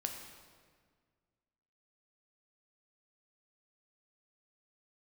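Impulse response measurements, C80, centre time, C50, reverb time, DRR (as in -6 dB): 6.5 dB, 43 ms, 5.0 dB, 1.7 s, 3.0 dB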